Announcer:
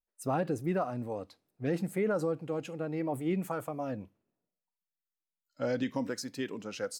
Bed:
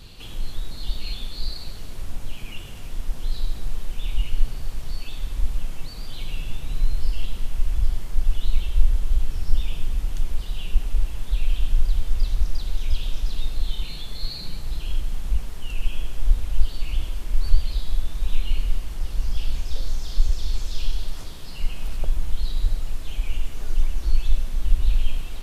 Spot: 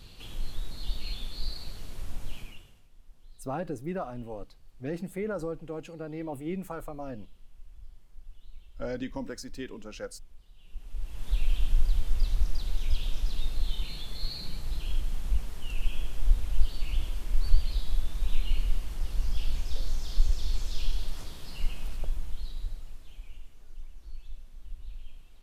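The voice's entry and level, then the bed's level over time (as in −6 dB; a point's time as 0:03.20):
3.20 s, −3.0 dB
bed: 0:02.38 −5.5 dB
0:02.89 −27 dB
0:10.56 −27 dB
0:11.30 −4.5 dB
0:21.65 −4.5 dB
0:23.65 −22.5 dB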